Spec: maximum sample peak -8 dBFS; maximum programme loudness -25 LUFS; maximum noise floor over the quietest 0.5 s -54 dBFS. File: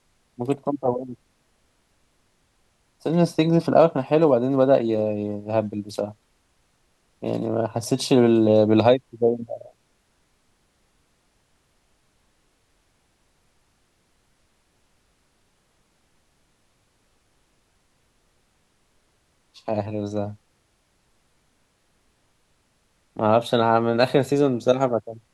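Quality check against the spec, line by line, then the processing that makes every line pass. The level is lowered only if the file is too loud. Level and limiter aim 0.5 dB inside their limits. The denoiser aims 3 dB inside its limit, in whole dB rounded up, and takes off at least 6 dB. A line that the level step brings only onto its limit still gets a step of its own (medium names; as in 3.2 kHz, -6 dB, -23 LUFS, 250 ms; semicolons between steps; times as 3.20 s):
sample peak -4.5 dBFS: fail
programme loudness -21.5 LUFS: fail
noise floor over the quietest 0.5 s -66 dBFS: pass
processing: trim -4 dB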